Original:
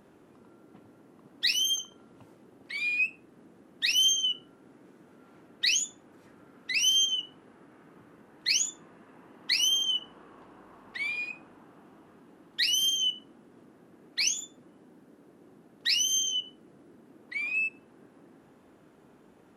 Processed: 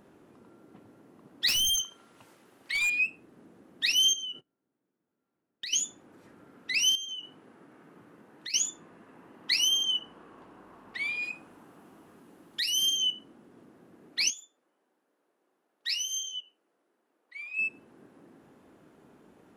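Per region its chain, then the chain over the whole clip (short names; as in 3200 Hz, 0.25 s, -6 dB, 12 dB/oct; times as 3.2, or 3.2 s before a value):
1.48–2.9 tilt shelf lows -8 dB, about 780 Hz + overloaded stage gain 24.5 dB
4.13–5.73 gate -49 dBFS, range -28 dB + compressor 10:1, threshold -34 dBFS
6.95–8.54 HPF 100 Hz + compressor 10:1, threshold -35 dBFS
11.22–12.75 high shelf 5400 Hz +9.5 dB + compressor 3:1, threshold -28 dBFS
14.3–17.59 HPF 570 Hz + flange 1.9 Hz, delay 4.8 ms, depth 2.1 ms, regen -83% + upward expander, over -43 dBFS
whole clip: dry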